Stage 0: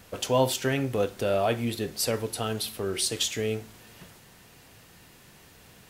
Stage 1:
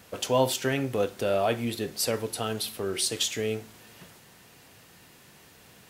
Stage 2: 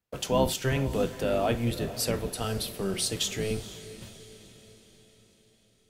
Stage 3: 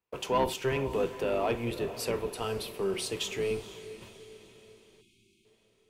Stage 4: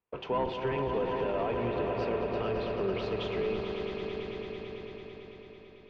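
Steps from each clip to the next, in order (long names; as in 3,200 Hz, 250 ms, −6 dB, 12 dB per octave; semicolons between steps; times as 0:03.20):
high-pass filter 110 Hz 6 dB per octave
sub-octave generator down 1 octave, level +2 dB; noise gate −47 dBFS, range −32 dB; feedback delay with all-pass diffusion 473 ms, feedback 52%, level −14.5 dB; level −2 dB
gain on a spectral selection 0:05.01–0:05.45, 390–2,100 Hz −28 dB; graphic EQ with 15 bands 400 Hz +11 dB, 1,000 Hz +12 dB, 2,500 Hz +9 dB; soft clipping −10 dBFS, distortion −19 dB; level −8 dB
Gaussian smoothing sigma 2.7 samples; echo that builds up and dies away 111 ms, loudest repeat 5, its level −10 dB; brickwall limiter −22.5 dBFS, peak gain reduction 5.5 dB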